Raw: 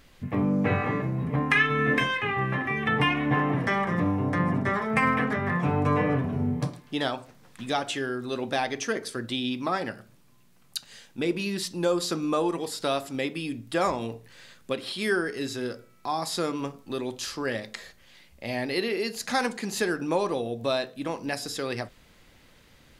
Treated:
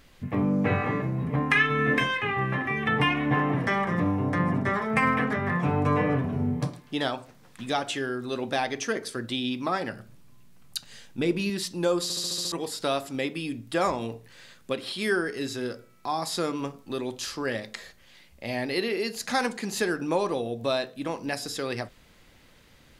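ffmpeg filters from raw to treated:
-filter_complex "[0:a]asettb=1/sr,asplit=3[a][b][c];[a]atrim=end=9.924[d];[b]atrim=start=9.92:end=11.5,asetpts=PTS-STARTPTS,afade=t=in:d=0.004:c=qsin,afade=t=out:st=1.576:d=0.004:c=qsin,lowshelf=f=140:g=9.5[e];[c]atrim=start=11.496[f];[d][e]acrossfade=d=0.004:c1=hsin:c2=qsin[g];[g][f]acrossfade=d=0.004:c1=qsin:c2=hsin,asplit=8[h][i][j][k][l][m][n][o];[h]atrim=end=12.102[p];[i]atrim=start=12.028:end=12.102[q];[j]atrim=start=12.028:end=12.102[r];[k]atrim=start=12.028:end=12.102[s];[l]atrim=start=12.028:end=12.102[t];[m]atrim=start=12.028:end=12.102[u];[n]atrim=start=12.028:end=12.102[v];[o]atrim=start=12.518[w];[p][q]acrossfade=d=0.004:c1=hsin:c2=hsin[x];[x][r]acrossfade=d=0.004:c1=hsin:c2=hsin[y];[y][s]acrossfade=d=0.004:c1=hsin:c2=hsin[z];[z][t]acrossfade=d=0.004:c1=hsin:c2=hsin[aa];[aa][u]acrossfade=d=0.004:c1=hsin:c2=hsin[ab];[ab][v]acrossfade=d=0.004:c1=hsin:c2=hsin[ac];[ac][w]acrossfade=d=0.004:c1=hsin:c2=hsin"

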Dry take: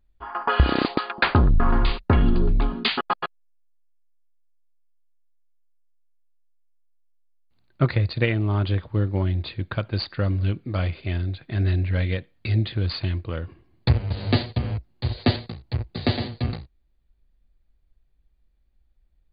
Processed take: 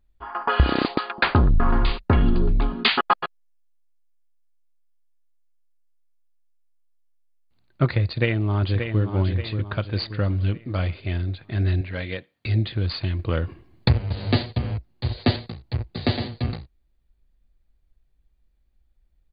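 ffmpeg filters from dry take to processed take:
-filter_complex "[0:a]asettb=1/sr,asplit=3[a][b][c];[a]atrim=end=2.794[d];[b]atrim=start=2.79:end=3.21,asetpts=PTS-STARTPTS,afade=t=in:d=0.004:c=qsin,afade=t=out:st=0.416:d=0.004:c=qsin,equalizer=f=1.4k:w=0.36:g=5.5[e];[c]atrim=start=3.206[f];[d][e]acrossfade=d=0.004:c1=hsin:c2=qsin[g];[g][f]acrossfade=d=0.004:c1=qsin:c2=hsin,asplit=2[h][i];[i]afade=t=in:st=8.04:d=0.01,afade=t=out:st=9.03:d=0.01,aecho=0:1:580|1160|1740|2320|2900:0.446684|0.201008|0.0904534|0.040704|0.0183168[j];[h][j]amix=inputs=2:normalize=0,asettb=1/sr,asplit=3[k][l][m];[k]atrim=end=11.814[n];[l]atrim=start=11.81:end=12.46,asetpts=PTS-STARTPTS,afade=t=in:d=0.004:c=qsin,afade=t=out:st=0.646:d=0.004:c=qsin,highpass=f=290:p=1[o];[m]atrim=start=12.456[p];[n][o]acrossfade=d=0.004:c1=hsin:c2=qsin[q];[q][p]acrossfade=d=0.004:c1=qsin:c2=hsin,asplit=3[r][s][t];[r]atrim=end=13.192[u];[s]atrim=start=13.188:end=13.882,asetpts=PTS-STARTPTS,volume=6dB[v];[t]atrim=start=13.878[w];[u][v]acrossfade=d=0.004:c1=hsin:c2=hsin[x];[x][w]acrossfade=d=0.004:c1=hsin:c2=hsin"

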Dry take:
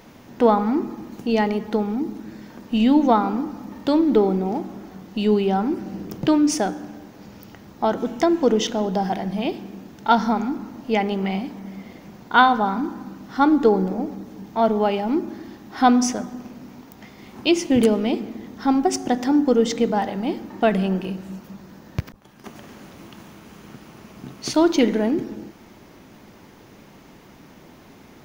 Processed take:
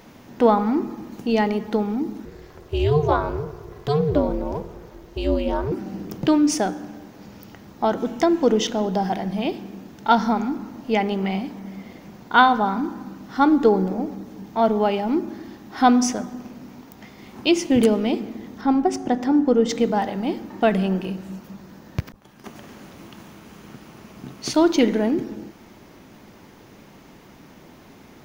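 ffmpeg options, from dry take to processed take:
-filter_complex "[0:a]asettb=1/sr,asplit=3[a][b][c];[a]atrim=end=2.254[d];[b]atrim=start=2.25:end=5.72,asetpts=PTS-STARTPTS,afade=t=in:d=0.004:c=qsin,afade=t=out:st=3.466:d=0.004:c=qsin,aeval=exprs='val(0)*sin(2*PI*150*n/s)':c=same[e];[c]atrim=start=5.716[f];[d][e]acrossfade=d=0.004:c1=hsin:c2=qsin[g];[g][f]acrossfade=d=0.004:c1=qsin:c2=hsin,asettb=1/sr,asplit=3[h][i][j];[h]atrim=end=18.614[k];[i]atrim=start=18.61:end=19.69,asetpts=PTS-STARTPTS,afade=t=in:d=0.004:c=qsin,afade=t=out:st=1.076:d=0.004:c=qsin,highshelf=f=2.9k:g=-9.5[l];[j]atrim=start=19.686[m];[k][l]acrossfade=d=0.004:c1=hsin:c2=qsin[n];[n][m]acrossfade=d=0.004:c1=qsin:c2=hsin"

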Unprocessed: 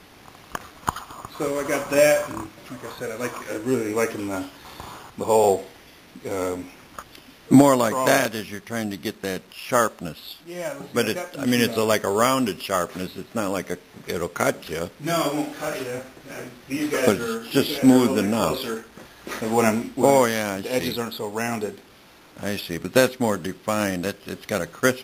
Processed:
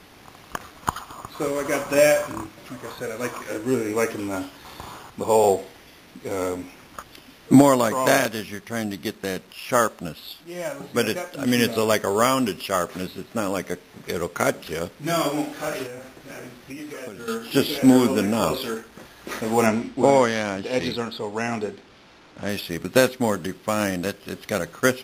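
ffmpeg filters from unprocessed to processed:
-filter_complex "[0:a]asettb=1/sr,asplit=3[a][b][c];[a]atrim=end=15.864[d];[b]atrim=start=15.86:end=17.28,asetpts=PTS-STARTPTS,afade=t=in:d=0.004:c=qsin,afade=t=out:st=1.416:d=0.004:c=qsin,acompressor=threshold=-33dB:ratio=6:attack=3.2:release=140:knee=1:detection=peak[e];[c]atrim=start=17.276[f];[d][e]acrossfade=d=0.004:c1=hsin:c2=qsin[g];[g][f]acrossfade=d=0.004:c1=qsin:c2=hsin,asettb=1/sr,asplit=3[h][i][j];[h]atrim=end=19.664[k];[i]atrim=start=19.66:end=22.49,asetpts=PTS-STARTPTS,afade=t=in:d=0.004:c=qsin,afade=t=out:st=2.826:d=0.004:c=qsin,lowpass=6k[l];[j]atrim=start=22.486[m];[k][l]acrossfade=d=0.004:c1=hsin:c2=qsin[n];[n][m]acrossfade=d=0.004:c1=qsin:c2=hsin"

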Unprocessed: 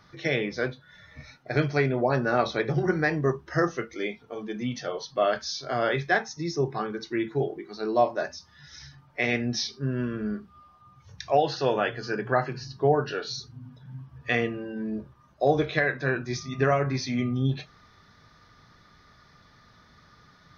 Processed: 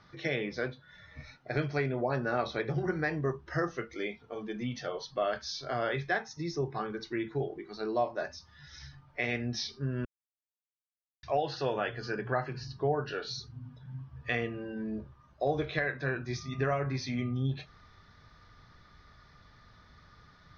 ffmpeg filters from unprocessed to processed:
-filter_complex "[0:a]asplit=3[a][b][c];[a]atrim=end=10.05,asetpts=PTS-STARTPTS,afade=t=out:st=10.046:d=0.004:c=hsin[d];[b]atrim=start=10.05:end=11.23,asetpts=PTS-STARTPTS,volume=0[e];[c]atrim=start=11.23,asetpts=PTS-STARTPTS,afade=t=in:d=0.004:c=hsin[f];[d][e][f]concat=n=3:v=0:a=1,lowpass=5.5k,asubboost=boost=2:cutoff=110,acompressor=threshold=-31dB:ratio=1.5,volume=-2.5dB"

